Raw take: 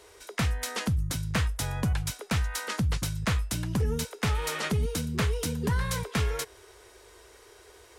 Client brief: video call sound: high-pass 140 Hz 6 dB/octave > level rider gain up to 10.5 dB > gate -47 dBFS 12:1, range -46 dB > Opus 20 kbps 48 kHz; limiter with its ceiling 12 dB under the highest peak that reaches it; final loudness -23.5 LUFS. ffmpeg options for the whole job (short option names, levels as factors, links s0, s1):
-af "alimiter=level_in=2.11:limit=0.0631:level=0:latency=1,volume=0.473,highpass=f=140:p=1,dynaudnorm=m=3.35,agate=range=0.00501:threshold=0.00447:ratio=12,volume=7.5" -ar 48000 -c:a libopus -b:a 20k